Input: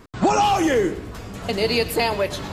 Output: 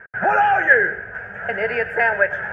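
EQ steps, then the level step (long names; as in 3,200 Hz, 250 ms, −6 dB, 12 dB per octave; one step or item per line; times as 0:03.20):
high-pass filter 310 Hz 6 dB per octave
low-pass with resonance 1,600 Hz, resonance Q 13
phaser with its sweep stopped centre 1,100 Hz, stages 6
+2.0 dB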